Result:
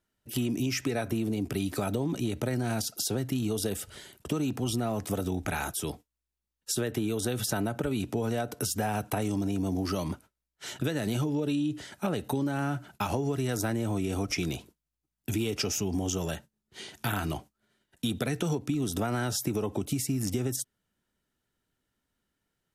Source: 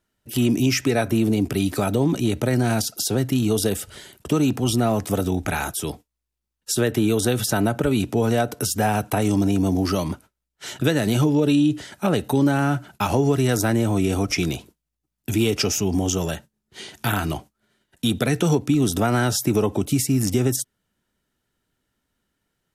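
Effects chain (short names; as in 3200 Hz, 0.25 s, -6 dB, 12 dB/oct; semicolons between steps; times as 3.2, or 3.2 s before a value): compressor, threshold -20 dBFS, peak gain reduction 6.5 dB; gain -5.5 dB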